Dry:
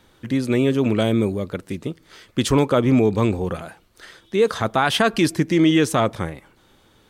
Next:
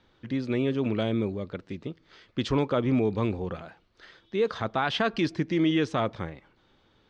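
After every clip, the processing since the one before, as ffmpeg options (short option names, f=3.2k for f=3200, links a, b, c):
-af "lowpass=f=5.1k:w=0.5412,lowpass=f=5.1k:w=1.3066,volume=-8dB"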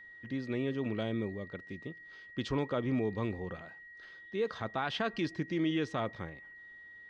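-af "aeval=exprs='val(0)+0.00794*sin(2*PI*1900*n/s)':c=same,volume=-7.5dB"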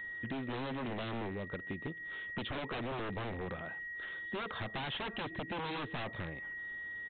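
-af "aresample=8000,aeval=exprs='0.0188*(abs(mod(val(0)/0.0188+3,4)-2)-1)':c=same,aresample=44100,acompressor=threshold=-46dB:ratio=6,volume=9dB"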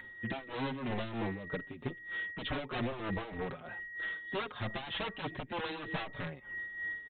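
-filter_complex "[0:a]tremolo=f=3.2:d=0.66,asplit=2[a][b];[b]adelay=5.1,afreqshift=-1.1[c];[a][c]amix=inputs=2:normalize=1,volume=7dB"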